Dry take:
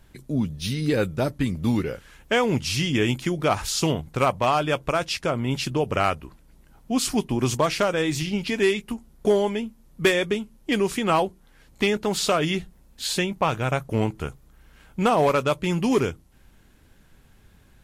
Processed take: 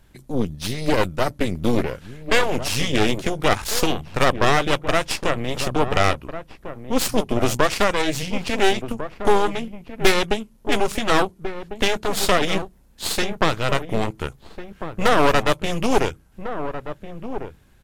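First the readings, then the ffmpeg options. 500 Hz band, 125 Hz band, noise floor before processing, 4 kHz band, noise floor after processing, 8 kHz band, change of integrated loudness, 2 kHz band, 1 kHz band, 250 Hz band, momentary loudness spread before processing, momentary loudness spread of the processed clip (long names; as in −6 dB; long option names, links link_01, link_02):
+2.0 dB, −0.5 dB, −55 dBFS, +4.0 dB, −53 dBFS, +3.0 dB, +2.0 dB, +5.0 dB, +3.5 dB, 0.0 dB, 7 LU, 14 LU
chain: -filter_complex "[0:a]aeval=exprs='0.376*(cos(1*acos(clip(val(0)/0.376,-1,1)))-cos(1*PI/2))+0.168*(cos(4*acos(clip(val(0)/0.376,-1,1)))-cos(4*PI/2))+0.0188*(cos(8*acos(clip(val(0)/0.376,-1,1)))-cos(8*PI/2))':channel_layout=same,asplit=2[link_01][link_02];[link_02]adelay=1399,volume=-10dB,highshelf=frequency=4000:gain=-31.5[link_03];[link_01][link_03]amix=inputs=2:normalize=0"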